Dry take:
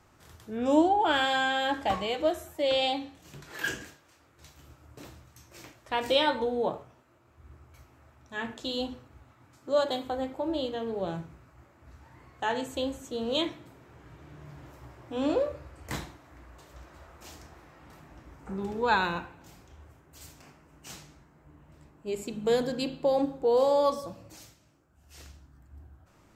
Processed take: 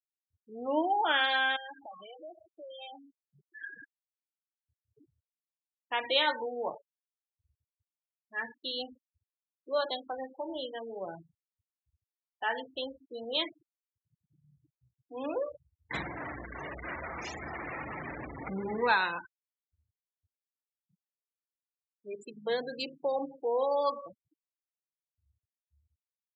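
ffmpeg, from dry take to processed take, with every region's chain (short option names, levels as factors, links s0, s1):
-filter_complex "[0:a]asettb=1/sr,asplit=3[s0][s1][s2];[s0]atrim=end=1.564[s3];[s1]atrim=start=1.56:end=3.76,asetpts=PTS-STARTPTS,afade=t=in:d=0.004:c=qsin,afade=t=out:st=2.196:d=0.004:c=qsin,acompressor=threshold=0.01:ratio=4:attack=3.2:release=140:knee=1:detection=peak,aecho=1:1:65|130|195|260:0.0944|0.0481|0.0246|0.0125,atrim=end_sample=97020[s4];[s2]atrim=start=3.756[s5];[s3][s4]acrossfade=d=0.004:c1=hsin:c2=qsin[s6];[s6][s5]acrossfade=d=0.004:c1=qsin:c2=hsin,asettb=1/sr,asplit=3[s7][s8][s9];[s7]atrim=end=15.944[s10];[s8]atrim=start=15.94:end=18.92,asetpts=PTS-STARTPTS,afade=t=in:d=0.004:c=qsin,afade=t=out:st=2.976:d=0.004:c=qsin,aeval=exprs='val(0)+0.5*0.0335*sgn(val(0))':c=same,lowshelf=f=290:g=11.5,bandreject=f=50.81:t=h:w=4,bandreject=f=101.62:t=h:w=4,bandreject=f=152.43:t=h:w=4,bandreject=f=203.24:t=h:w=4,bandreject=f=254.05:t=h:w=4,bandreject=f=304.86:t=h:w=4,bandreject=f=355.67:t=h:w=4,bandreject=f=406.48:t=h:w=4,bandreject=f=457.29:t=h:w=4,bandreject=f=508.1:t=h:w=4,bandreject=f=558.91:t=h:w=4,bandreject=f=609.72:t=h:w=4,bandreject=f=660.53:t=h:w=4,bandreject=f=711.34:t=h:w=4,bandreject=f=762.15:t=h:w=4,bandreject=f=812.96:t=h:w=4,bandreject=f=863.77:t=h:w=4,bandreject=f=914.58:t=h:w=4,bandreject=f=965.39:t=h:w=4,bandreject=f=1016.2:t=h:w=4,bandreject=f=1067.01:t=h:w=4,bandreject=f=1117.82:t=h:w=4,bandreject=f=1168.63:t=h:w=4,bandreject=f=1219.44:t=h:w=4,bandreject=f=1270.25:t=h:w=4,bandreject=f=1321.06:t=h:w=4,bandreject=f=1371.87:t=h:w=4,bandreject=f=1422.68:t=h:w=4,bandreject=f=1473.49:t=h:w=4,bandreject=f=1524.3:t=h:w=4,bandreject=f=1575.11:t=h:w=4,bandreject=f=1625.92:t=h:w=4,bandreject=f=1676.73:t=h:w=4,bandreject=f=1727.54:t=h:w=4,bandreject=f=1778.35:t=h:w=4,bandreject=f=1829.16:t=h:w=4,bandreject=f=1879.97:t=h:w=4,bandreject=f=1930.78:t=h:w=4[s11];[s9]atrim=start=18.916[s12];[s10][s11]acrossfade=d=0.004:c1=hsin:c2=qsin[s13];[s13][s12]acrossfade=d=0.004:c1=qsin:c2=hsin,adynamicequalizer=threshold=0.00316:dfrequency=2000:dqfactor=2.4:tfrequency=2000:tqfactor=2.4:attack=5:release=100:ratio=0.375:range=2.5:mode=boostabove:tftype=bell,afftfilt=real='re*gte(hypot(re,im),0.0316)':imag='im*gte(hypot(re,im),0.0316)':win_size=1024:overlap=0.75,highpass=f=930:p=1"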